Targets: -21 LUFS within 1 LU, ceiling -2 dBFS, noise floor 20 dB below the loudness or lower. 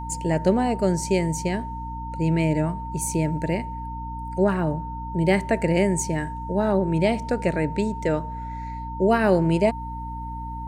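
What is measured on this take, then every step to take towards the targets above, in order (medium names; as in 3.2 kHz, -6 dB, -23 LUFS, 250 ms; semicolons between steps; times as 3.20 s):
hum 60 Hz; highest harmonic 300 Hz; hum level -32 dBFS; steady tone 910 Hz; tone level -33 dBFS; loudness -24.0 LUFS; peak level -6.5 dBFS; loudness target -21.0 LUFS
-> hum notches 60/120/180/240/300 Hz; band-stop 910 Hz, Q 30; trim +3 dB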